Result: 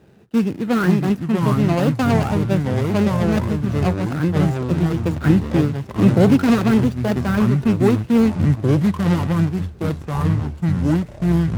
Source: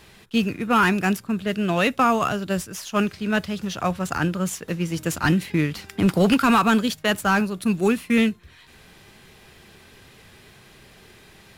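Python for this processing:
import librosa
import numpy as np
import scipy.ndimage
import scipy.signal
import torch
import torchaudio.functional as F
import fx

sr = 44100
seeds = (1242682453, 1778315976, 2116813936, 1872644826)

y = scipy.signal.medfilt(x, 41)
y = scipy.signal.sosfilt(scipy.signal.butter(2, 100.0, 'highpass', fs=sr, output='sos'), y)
y = fx.echo_pitch(y, sr, ms=406, semitones=-5, count=3, db_per_echo=-3.0)
y = F.gain(torch.from_numpy(y), 5.0).numpy()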